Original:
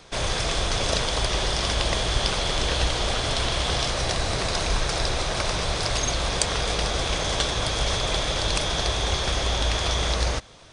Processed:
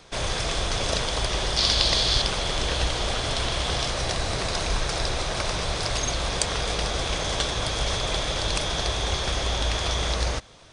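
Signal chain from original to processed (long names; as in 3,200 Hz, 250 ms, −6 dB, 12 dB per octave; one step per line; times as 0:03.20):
0:01.57–0:02.22: parametric band 4,400 Hz +12.5 dB 0.74 octaves
level −1.5 dB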